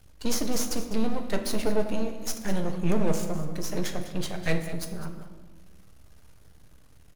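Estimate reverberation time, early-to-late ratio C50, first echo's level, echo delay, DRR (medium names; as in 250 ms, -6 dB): 1.3 s, 7.5 dB, -15.0 dB, 202 ms, 4.0 dB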